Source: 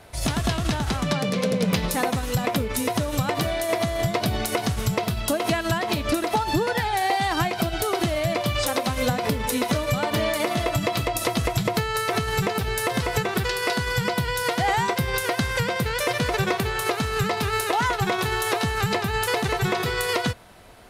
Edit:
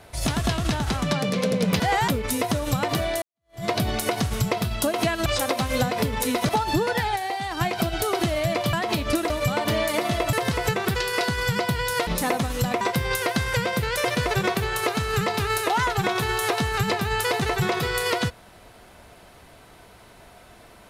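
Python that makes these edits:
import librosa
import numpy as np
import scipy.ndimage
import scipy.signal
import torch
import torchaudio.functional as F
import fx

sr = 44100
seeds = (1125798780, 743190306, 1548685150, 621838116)

y = fx.edit(x, sr, fx.swap(start_s=1.8, length_s=0.74, other_s=14.56, other_length_s=0.28),
    fx.fade_in_span(start_s=3.68, length_s=0.43, curve='exp'),
    fx.swap(start_s=5.72, length_s=0.57, other_s=8.53, other_length_s=1.23),
    fx.clip_gain(start_s=6.96, length_s=0.45, db=-6.0),
    fx.cut(start_s=10.79, length_s=2.03), tone=tone)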